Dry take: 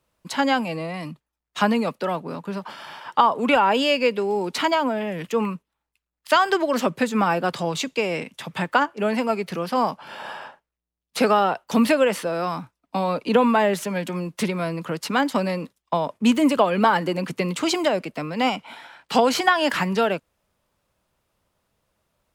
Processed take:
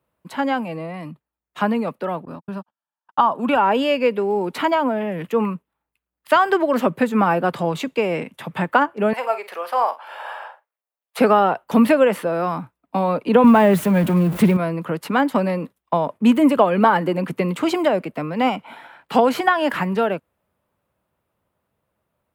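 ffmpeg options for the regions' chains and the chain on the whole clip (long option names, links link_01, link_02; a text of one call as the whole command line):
ffmpeg -i in.wav -filter_complex "[0:a]asettb=1/sr,asplit=3[link_01][link_02][link_03];[link_01]atrim=end=2.254[link_04];[link_02]atrim=start=2.25:end=3.58,asetpts=PTS-STARTPTS,afade=type=in:duration=0.004:curve=qsin,afade=type=out:start_time=1.326:duration=0.004:curve=qsin,agate=range=-55dB:threshold=-32dB:ratio=16:release=100:detection=peak,equalizer=frequency=450:width=3.7:gain=-9,bandreject=frequency=2100:width=5.2[link_05];[link_03]atrim=start=3.576[link_06];[link_04][link_05]acrossfade=duration=0.004:curve1=hsin:curve2=qsin[link_07];[link_07][link_06]acrossfade=duration=0.004:curve1=qsin:curve2=hsin,asettb=1/sr,asplit=3[link_08][link_09][link_10];[link_08]atrim=end=9.134[link_11];[link_09]atrim=start=9.13:end=11.19,asetpts=PTS-STARTPTS,afade=type=in:duration=0.004:curve=qsin,afade=type=out:start_time=2.056:duration=0.004:curve=qsin,highpass=frequency=550:width=0.5412,highpass=frequency=550:width=1.3066,asplit=2[link_12][link_13];[link_13]adelay=48,volume=-12dB[link_14];[link_12][link_14]amix=inputs=2:normalize=0,atrim=end_sample=90846[link_15];[link_10]atrim=start=11.186[link_16];[link_11][link_15]acrossfade=duration=0.004:curve1=hsin:curve2=qsin[link_17];[link_17][link_16]acrossfade=duration=0.004:curve1=qsin:curve2=hsin,asettb=1/sr,asplit=3[link_18][link_19][link_20];[link_18]atrim=end=13.444[link_21];[link_19]atrim=start=13.44:end=14.57,asetpts=PTS-STARTPTS,afade=type=in:duration=0.004:curve=qsin,afade=type=out:start_time=1.126:duration=0.004:curve=qsin,aeval=exprs='val(0)+0.5*0.0355*sgn(val(0))':channel_layout=same,bass=frequency=250:gain=8,treble=frequency=4000:gain=1[link_22];[link_20]atrim=start=14.566[link_23];[link_21][link_22]acrossfade=duration=0.004:curve1=hsin:curve2=qsin[link_24];[link_24][link_23]acrossfade=duration=0.004:curve1=qsin:curve2=hsin,highpass=69,equalizer=frequency=5700:width=0.71:gain=-14,dynaudnorm=framelen=290:gausssize=21:maxgain=7dB" out.wav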